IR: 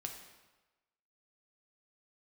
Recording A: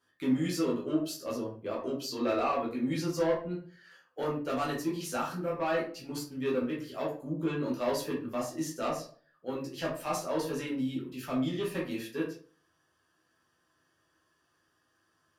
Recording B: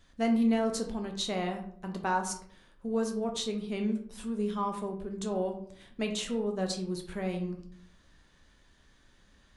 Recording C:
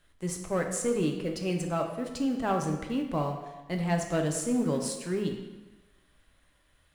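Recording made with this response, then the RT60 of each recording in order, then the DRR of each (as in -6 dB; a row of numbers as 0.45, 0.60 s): C; 0.45, 0.60, 1.1 s; -5.5, 3.0, 2.5 dB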